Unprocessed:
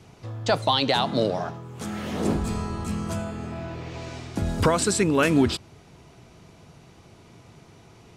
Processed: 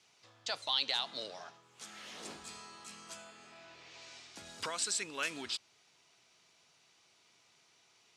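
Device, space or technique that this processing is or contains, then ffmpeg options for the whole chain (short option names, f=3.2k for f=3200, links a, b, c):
piezo pickup straight into a mixer: -filter_complex "[0:a]asettb=1/sr,asplit=3[a][b][c];[a]atrim=end=2.594[d];[b]atrim=start=2.59:end=3.68,asetpts=PTS-STARTPTS,afade=t=in:d=0.004:c=qsin,afade=t=out:st=1.086:d=0.004:c=qsin,highpass=120[e];[c]atrim=start=3.676[f];[d][e]acrossfade=d=0.004:c1=hsin:c2=qsin[g];[g][f]acrossfade=d=0.004:c1=qsin:c2=hsin,lowpass=5.3k,aderivative"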